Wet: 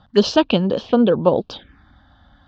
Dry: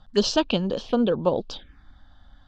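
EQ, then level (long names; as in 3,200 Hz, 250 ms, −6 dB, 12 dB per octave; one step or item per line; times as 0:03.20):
high-pass filter 73 Hz 12 dB per octave
high-frequency loss of the air 100 metres
high-shelf EQ 6,100 Hz −5 dB
+7.0 dB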